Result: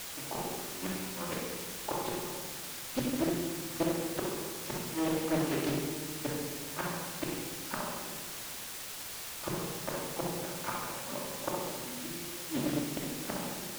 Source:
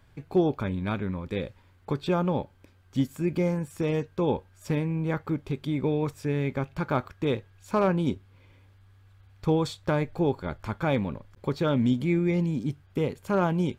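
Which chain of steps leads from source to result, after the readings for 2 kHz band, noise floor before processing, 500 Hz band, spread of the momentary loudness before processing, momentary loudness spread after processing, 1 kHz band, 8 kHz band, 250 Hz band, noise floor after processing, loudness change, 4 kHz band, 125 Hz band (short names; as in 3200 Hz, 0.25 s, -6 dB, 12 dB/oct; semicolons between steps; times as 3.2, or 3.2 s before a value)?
-3.0 dB, -58 dBFS, -9.0 dB, 9 LU, 7 LU, -5.5 dB, +14.5 dB, -8.5 dB, -42 dBFS, -7.0 dB, +3.5 dB, -13.5 dB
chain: G.711 law mismatch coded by A; HPF 660 Hz 12 dB/oct; tilt -2.5 dB/oct; harmonic-percussive split harmonic +5 dB; flipped gate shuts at -26 dBFS, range -31 dB; on a send: flutter echo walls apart 11.1 m, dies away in 0.62 s; on the sum: shoebox room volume 1200 m³, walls mixed, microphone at 2.6 m; in parallel at -4.5 dB: requantised 6-bit, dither triangular; on the sum: Doppler distortion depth 0.75 ms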